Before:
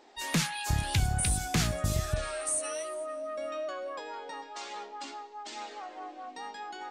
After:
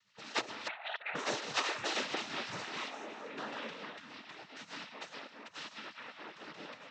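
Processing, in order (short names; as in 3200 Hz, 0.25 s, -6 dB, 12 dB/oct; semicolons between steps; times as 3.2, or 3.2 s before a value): 0.67–1.15 sine-wave speech; AGC gain up to 5 dB; spectral gate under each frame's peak -25 dB weak; noise vocoder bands 12; air absorption 220 m; gain +10 dB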